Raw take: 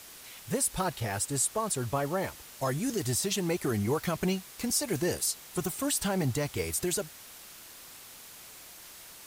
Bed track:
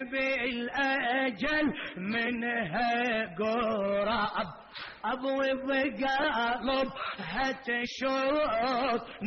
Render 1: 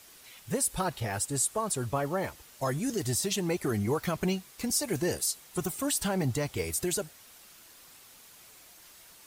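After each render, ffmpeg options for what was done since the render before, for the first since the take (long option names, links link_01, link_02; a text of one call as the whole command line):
ffmpeg -i in.wav -af "afftdn=noise_reduction=6:noise_floor=-49" out.wav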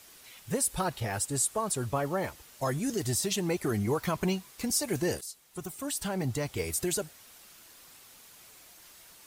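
ffmpeg -i in.wav -filter_complex "[0:a]asettb=1/sr,asplit=3[link_01][link_02][link_03];[link_01]atrim=end=4.004[link_04];[link_02]atrim=start=4:end=4.52,asetpts=PTS-STARTPTS,afade=type=in:duration=0.004:curve=qsin,afade=type=out:start_time=0.516:duration=0.004:curve=qsin,equalizer=frequency=1000:width_type=o:width=0.23:gain=7[link_05];[link_03]atrim=start=4.516[link_06];[link_04][link_05]acrossfade=duration=0.004:curve1=hsin:curve2=qsin[link_07];[link_07][link_06]acrossfade=duration=0.004:curve1=qsin:curve2=hsin,asplit=2[link_08][link_09];[link_08]atrim=end=5.21,asetpts=PTS-STARTPTS,afade=type=out:start_time=5.206:duration=0.004:curve=hsin:silence=0.223872[link_10];[link_09]atrim=start=5.21,asetpts=PTS-STARTPTS,afade=type=in:duration=1.49:silence=0.223872[link_11];[link_10][link_11]concat=n=2:v=0:a=1" out.wav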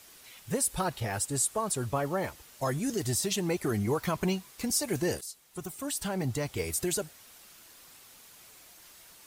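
ffmpeg -i in.wav -af anull out.wav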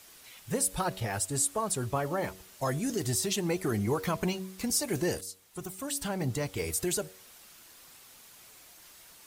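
ffmpeg -i in.wav -af "bandreject=frequency=94.08:width_type=h:width=4,bandreject=frequency=188.16:width_type=h:width=4,bandreject=frequency=282.24:width_type=h:width=4,bandreject=frequency=376.32:width_type=h:width=4,bandreject=frequency=470.4:width_type=h:width=4,bandreject=frequency=564.48:width_type=h:width=4,bandreject=frequency=658.56:width_type=h:width=4" out.wav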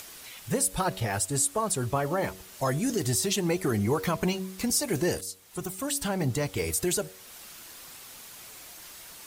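ffmpeg -i in.wav -filter_complex "[0:a]asplit=2[link_01][link_02];[link_02]alimiter=level_in=1.5dB:limit=-24dB:level=0:latency=1:release=310,volume=-1.5dB,volume=-2dB[link_03];[link_01][link_03]amix=inputs=2:normalize=0,acompressor=mode=upward:threshold=-40dB:ratio=2.5" out.wav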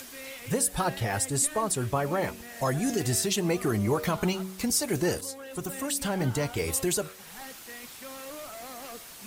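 ffmpeg -i in.wav -i bed.wav -filter_complex "[1:a]volume=-14.5dB[link_01];[0:a][link_01]amix=inputs=2:normalize=0" out.wav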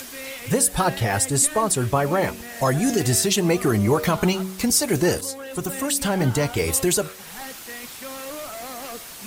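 ffmpeg -i in.wav -af "volume=7dB" out.wav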